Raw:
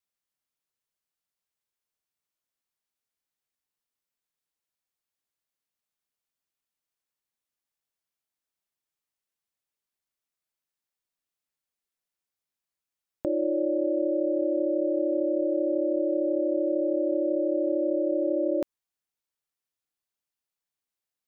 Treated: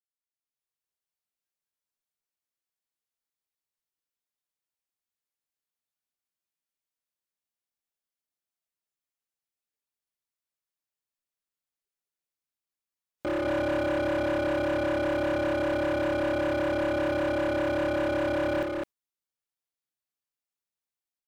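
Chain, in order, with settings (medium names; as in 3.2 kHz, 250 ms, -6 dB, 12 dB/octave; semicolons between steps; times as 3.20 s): spectral noise reduction 12 dB; level rider gain up to 12 dB; overload inside the chain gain 20.5 dB; delay 208 ms -3 dB; trim -6.5 dB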